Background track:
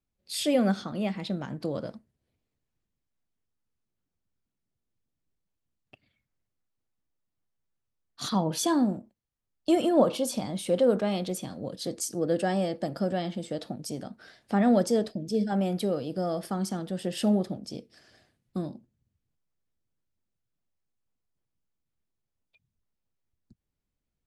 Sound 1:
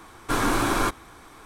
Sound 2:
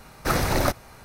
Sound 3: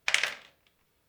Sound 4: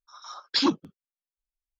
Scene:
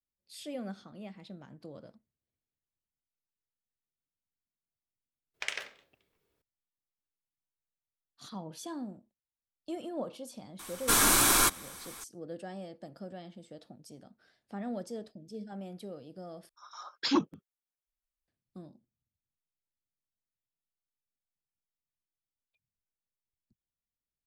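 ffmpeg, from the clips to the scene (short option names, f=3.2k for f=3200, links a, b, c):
-filter_complex "[0:a]volume=-15.5dB[a];[3:a]equalizer=f=390:t=o:w=0.8:g=9.5[b];[1:a]crystalizer=i=7.5:c=0[c];[4:a]equalizer=f=4.3k:w=1.5:g=-6[d];[a]asplit=2[e][f];[e]atrim=end=16.494[g];[d]atrim=end=1.79,asetpts=PTS-STARTPTS,volume=-3.5dB[h];[f]atrim=start=18.276[i];[b]atrim=end=1.08,asetpts=PTS-STARTPTS,volume=-10dB,afade=t=in:d=0.004:c=hsin,afade=t=out:st=1.076:d=0.004:c=hsin,adelay=5340[j];[c]atrim=end=1.45,asetpts=PTS-STARTPTS,volume=-8dB,afade=t=in:d=0.004:c=hsin,afade=t=out:st=1.446:d=0.004:c=hsin,adelay=10590[k];[g][h]acrossfade=d=0.004:c1=hsin:c2=hsin[l];[l][i]acrossfade=d=0.004:c1=hsin:c2=hsin[m];[m][j][k]amix=inputs=3:normalize=0"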